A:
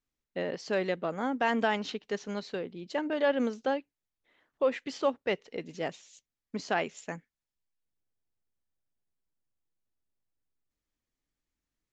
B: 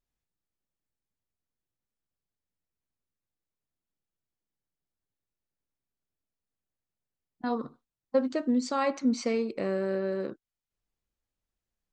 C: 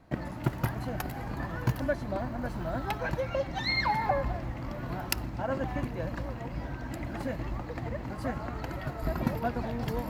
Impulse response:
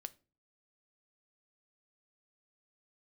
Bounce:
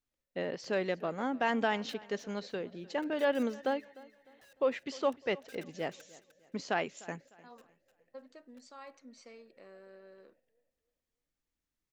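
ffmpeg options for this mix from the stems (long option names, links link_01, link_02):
-filter_complex "[0:a]volume=-2.5dB,asplit=3[link_01][link_02][link_03];[link_02]volume=-21.5dB[link_04];[1:a]highpass=frequency=700:poles=1,volume=-19dB[link_05];[2:a]asplit=3[link_06][link_07][link_08];[link_06]bandpass=frequency=530:width_type=q:width=8,volume=0dB[link_09];[link_07]bandpass=frequency=1840:width_type=q:width=8,volume=-6dB[link_10];[link_08]bandpass=frequency=2480:width_type=q:width=8,volume=-9dB[link_11];[link_09][link_10][link_11]amix=inputs=3:normalize=0,highshelf=frequency=5900:gain=11.5,aeval=exprs='(mod(37.6*val(0)+1,2)-1)/37.6':channel_layout=same,volume=-16.5dB,asplit=2[link_12][link_13];[link_13]volume=-10dB[link_14];[link_03]apad=whole_len=445230[link_15];[link_12][link_15]sidechaingate=range=-33dB:threshold=-52dB:ratio=16:detection=peak[link_16];[link_04][link_14]amix=inputs=2:normalize=0,aecho=0:1:302|604|906|1208|1510:1|0.35|0.122|0.0429|0.015[link_17];[link_01][link_05][link_16][link_17]amix=inputs=4:normalize=0"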